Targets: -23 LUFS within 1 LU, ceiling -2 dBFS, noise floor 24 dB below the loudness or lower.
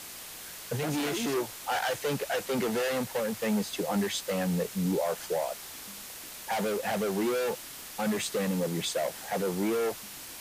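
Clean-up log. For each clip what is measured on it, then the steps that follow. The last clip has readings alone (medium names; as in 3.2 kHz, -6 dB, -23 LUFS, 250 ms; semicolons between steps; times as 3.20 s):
noise floor -44 dBFS; noise floor target -55 dBFS; loudness -31.0 LUFS; peak level -19.0 dBFS; loudness target -23.0 LUFS
-> noise print and reduce 11 dB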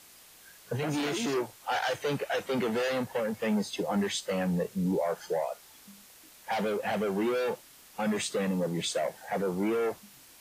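noise floor -55 dBFS; loudness -31.0 LUFS; peak level -19.0 dBFS; loudness target -23.0 LUFS
-> trim +8 dB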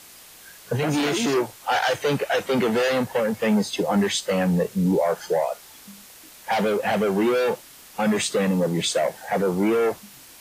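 loudness -23.0 LUFS; peak level -11.0 dBFS; noise floor -47 dBFS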